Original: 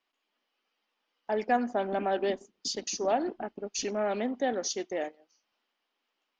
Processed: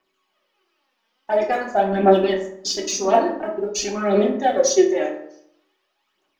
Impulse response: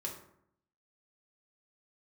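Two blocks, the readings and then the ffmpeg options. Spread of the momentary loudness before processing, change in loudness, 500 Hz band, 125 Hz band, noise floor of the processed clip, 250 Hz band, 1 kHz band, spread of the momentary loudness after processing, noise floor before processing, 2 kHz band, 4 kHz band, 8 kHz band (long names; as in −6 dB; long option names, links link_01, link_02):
8 LU, +11.5 dB, +12.5 dB, can't be measured, −72 dBFS, +11.5 dB, +10.0 dB, 9 LU, −82 dBFS, +8.5 dB, +9.0 dB, +10.5 dB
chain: -filter_complex "[0:a]aphaser=in_gain=1:out_gain=1:delay=4.5:decay=0.67:speed=0.48:type=triangular[link_01];[1:a]atrim=start_sample=2205[link_02];[link_01][link_02]afir=irnorm=-1:irlink=0,volume=8dB"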